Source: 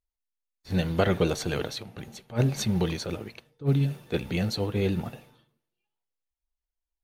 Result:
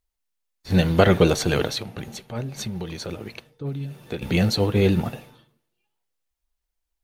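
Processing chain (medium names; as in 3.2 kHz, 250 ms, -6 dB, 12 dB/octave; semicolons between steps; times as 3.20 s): 1.84–4.22 s: compression 10:1, threshold -35 dBFS, peak gain reduction 16.5 dB; trim +7.5 dB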